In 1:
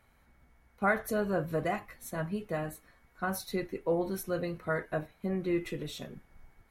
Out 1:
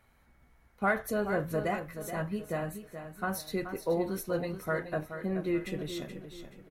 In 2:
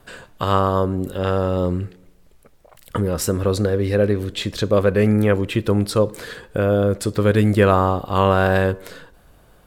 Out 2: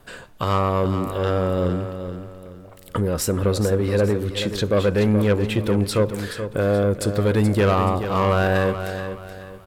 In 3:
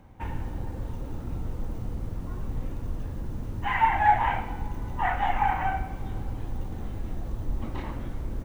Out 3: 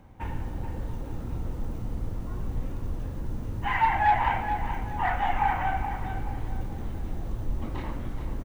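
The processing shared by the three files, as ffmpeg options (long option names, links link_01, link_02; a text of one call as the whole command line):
ffmpeg -i in.wav -filter_complex "[0:a]asoftclip=type=tanh:threshold=-12dB,asplit=2[link_01][link_02];[link_02]aecho=0:1:427|854|1281|1708:0.335|0.114|0.0387|0.0132[link_03];[link_01][link_03]amix=inputs=2:normalize=0" out.wav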